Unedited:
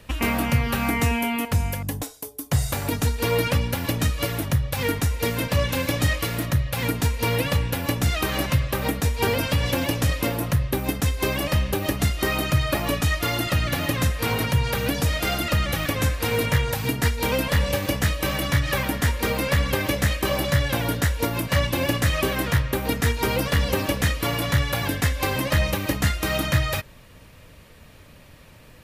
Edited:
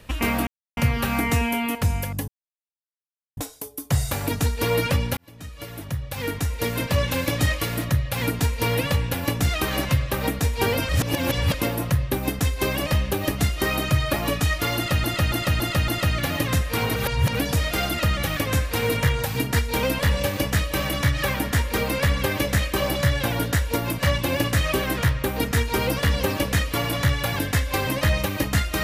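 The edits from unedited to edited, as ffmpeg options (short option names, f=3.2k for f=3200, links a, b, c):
-filter_complex "[0:a]asplit=12[a][b][c][d][e][f][g][h][i][j][k][l];[a]atrim=end=0.47,asetpts=PTS-STARTPTS,afade=t=out:st=0.466:d=0.004:c=hsin,apad=pad_dur=0.3[m];[b]atrim=start=0.47:end=1.98,asetpts=PTS-STARTPTS,afade=t=in:d=0.004:c=hsin,afade=t=out:st=1.506:d=0.004:c=hsin,apad=pad_dur=1.09[n];[c]atrim=start=1.98:end=3.78,asetpts=PTS-STARTPTS,afade=t=in:d=0.004:c=hsin,afade=t=out:st=1.796:d=0.004:c=hsin[o];[d]atrim=start=3.78:end=9.502,asetpts=PTS-STARTPTS,afade=t=in:d=1.72[p];[e]atrim=start=9.498:end=10.152,asetpts=PTS-STARTPTS,areverse[q];[f]atrim=start=10.148:end=13.652[r];[g]atrim=start=13.368:end=13.652[s];[h]atrim=start=13.368:end=13.652[t];[i]atrim=start=13.368:end=13.652[u];[j]atrim=start=13.368:end=14.452[v];[k]atrim=start=14.448:end=14.842,asetpts=PTS-STARTPTS,areverse[w];[l]atrim=start=14.838[x];[m][n][o][p]concat=n=4:v=0:a=1[y];[y][q]acrossfade=d=0.004:c1=hsin:c2=hsin[z];[z][r]acrossfade=d=0.004:c1=hsin:c2=hsin[aa];[aa][s]acrossfade=d=0.004:c1=hsin:c2=hsin[ab];[ab][t]acrossfade=d=0.004:c1=hsin:c2=hsin[ac];[ac][u]acrossfade=d=0.004:c1=hsin:c2=hsin[ad];[ad][v]acrossfade=d=0.004:c1=hsin:c2=hsin[ae];[ae][w]acrossfade=d=0.004:c1=hsin:c2=hsin[af];[af][x]acrossfade=d=0.004:c1=hsin:c2=hsin"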